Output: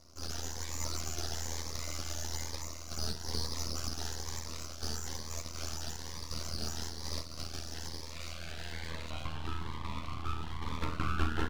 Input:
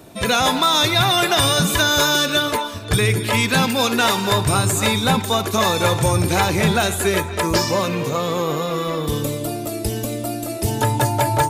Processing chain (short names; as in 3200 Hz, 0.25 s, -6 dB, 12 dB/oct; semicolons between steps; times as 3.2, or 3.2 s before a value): delta modulation 64 kbps, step -35.5 dBFS; high-pass sweep 2200 Hz -> 730 Hz, 7.82–9.12; mistuned SSB -55 Hz 150–3600 Hz; resonator 130 Hz, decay 0.17 s, harmonics all, mix 70%; frequency-shifting echo 0.358 s, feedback 51%, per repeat -61 Hz, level -9 dB; AM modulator 81 Hz, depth 75%; band shelf 1200 Hz -8.5 dB; full-wave rectifier; cascading phaser rising 1.1 Hz; gain +1 dB